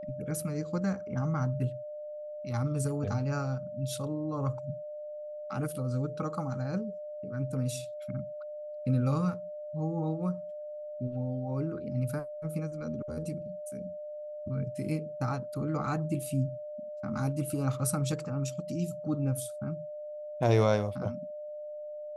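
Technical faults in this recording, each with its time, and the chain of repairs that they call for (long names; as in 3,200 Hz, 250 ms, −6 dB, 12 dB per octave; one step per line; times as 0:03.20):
whistle 600 Hz −38 dBFS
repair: notch filter 600 Hz, Q 30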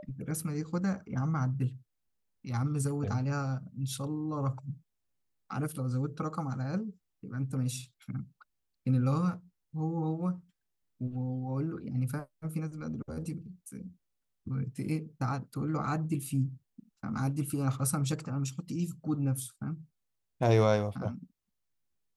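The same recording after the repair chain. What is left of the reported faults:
none of them is left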